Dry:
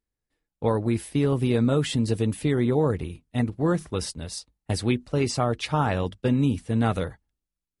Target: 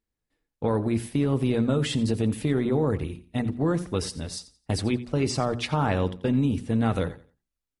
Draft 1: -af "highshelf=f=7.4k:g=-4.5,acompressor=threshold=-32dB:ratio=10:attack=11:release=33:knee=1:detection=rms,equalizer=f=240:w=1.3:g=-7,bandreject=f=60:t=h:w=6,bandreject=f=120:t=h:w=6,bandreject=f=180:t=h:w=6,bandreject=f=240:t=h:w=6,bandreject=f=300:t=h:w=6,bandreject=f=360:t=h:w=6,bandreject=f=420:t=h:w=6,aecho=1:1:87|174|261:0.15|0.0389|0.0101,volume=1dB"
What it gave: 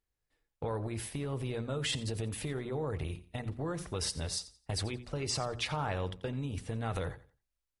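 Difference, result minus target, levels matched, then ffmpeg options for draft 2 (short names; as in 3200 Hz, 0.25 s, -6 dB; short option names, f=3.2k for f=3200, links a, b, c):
compressor: peak gain reduction +8 dB; 250 Hz band -5.5 dB
-af "highshelf=f=7.4k:g=-4.5,acompressor=threshold=-23dB:ratio=10:attack=11:release=33:knee=1:detection=rms,equalizer=f=240:w=1.3:g=3,bandreject=f=60:t=h:w=6,bandreject=f=120:t=h:w=6,bandreject=f=180:t=h:w=6,bandreject=f=240:t=h:w=6,bandreject=f=300:t=h:w=6,bandreject=f=360:t=h:w=6,bandreject=f=420:t=h:w=6,aecho=1:1:87|174|261:0.15|0.0389|0.0101,volume=1dB"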